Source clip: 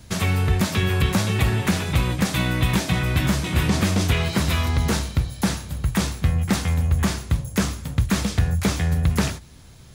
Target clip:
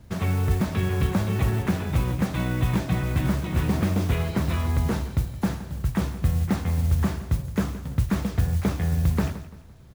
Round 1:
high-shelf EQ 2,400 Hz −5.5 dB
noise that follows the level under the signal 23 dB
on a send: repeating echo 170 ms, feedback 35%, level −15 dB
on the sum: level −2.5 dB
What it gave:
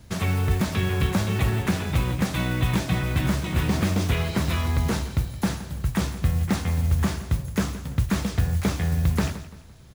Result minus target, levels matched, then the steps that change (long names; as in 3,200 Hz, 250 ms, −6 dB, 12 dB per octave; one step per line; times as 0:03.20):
4,000 Hz band +5.5 dB
change: high-shelf EQ 2,400 Hz −15.5 dB